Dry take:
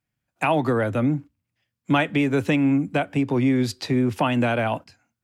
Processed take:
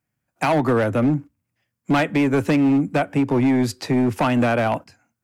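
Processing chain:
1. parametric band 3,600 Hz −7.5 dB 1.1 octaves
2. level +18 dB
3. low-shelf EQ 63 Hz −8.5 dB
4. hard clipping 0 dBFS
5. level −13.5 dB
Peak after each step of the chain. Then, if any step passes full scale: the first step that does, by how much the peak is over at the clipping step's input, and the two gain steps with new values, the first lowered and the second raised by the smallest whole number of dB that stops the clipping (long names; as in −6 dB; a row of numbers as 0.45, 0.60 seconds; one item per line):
−9.5, +8.5, +9.0, 0.0, −13.5 dBFS
step 2, 9.0 dB
step 2 +9 dB, step 5 −4.5 dB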